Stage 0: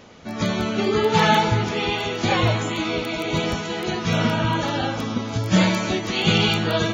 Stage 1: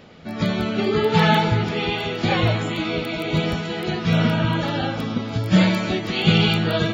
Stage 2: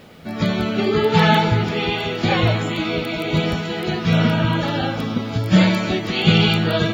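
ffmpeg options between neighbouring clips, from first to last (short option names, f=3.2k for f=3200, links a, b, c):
-af "equalizer=f=160:t=o:w=0.33:g=6,equalizer=f=1k:t=o:w=0.33:g=-5,equalizer=f=6.3k:t=o:w=0.33:g=-12"
-af "acrusher=bits=9:mix=0:aa=0.000001,volume=2dB"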